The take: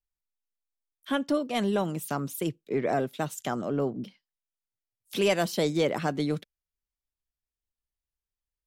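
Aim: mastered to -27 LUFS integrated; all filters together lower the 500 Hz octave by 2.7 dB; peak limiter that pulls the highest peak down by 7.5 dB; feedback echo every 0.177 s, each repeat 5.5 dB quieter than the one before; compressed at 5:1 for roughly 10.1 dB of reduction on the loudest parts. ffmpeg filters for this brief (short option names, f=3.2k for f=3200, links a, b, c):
-af "equalizer=f=500:t=o:g=-3.5,acompressor=threshold=-34dB:ratio=5,alimiter=level_in=4dB:limit=-24dB:level=0:latency=1,volume=-4dB,aecho=1:1:177|354|531|708|885|1062|1239:0.531|0.281|0.149|0.079|0.0419|0.0222|0.0118,volume=11.5dB"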